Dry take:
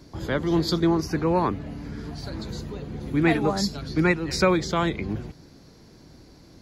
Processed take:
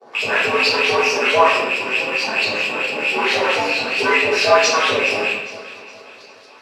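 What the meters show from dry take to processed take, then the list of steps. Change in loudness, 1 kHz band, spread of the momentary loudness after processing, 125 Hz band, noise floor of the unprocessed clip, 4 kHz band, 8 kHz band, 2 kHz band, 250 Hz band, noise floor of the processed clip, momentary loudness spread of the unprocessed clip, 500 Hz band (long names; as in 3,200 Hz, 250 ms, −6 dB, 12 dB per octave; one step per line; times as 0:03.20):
+8.5 dB, +10.5 dB, 7 LU, −13.0 dB, −51 dBFS, +13.5 dB, +10.5 dB, +15.5 dB, −7.0 dB, −44 dBFS, 13 LU, +8.5 dB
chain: loose part that buzzes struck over −34 dBFS, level −13 dBFS
bass and treble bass −7 dB, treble +1 dB
in parallel at +2.5 dB: brickwall limiter −18 dBFS, peak gain reduction 11 dB
on the sum: leveller curve on the samples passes 5
auto-filter band-pass saw up 4.5 Hz 410–5,100 Hz
on a send: delay that swaps between a low-pass and a high-pass 206 ms, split 850 Hz, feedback 67%, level −12.5 dB
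on the sum: rectangular room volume 150 cubic metres, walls mixed, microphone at 3.2 metres
frequency shifter +93 Hz
level −11 dB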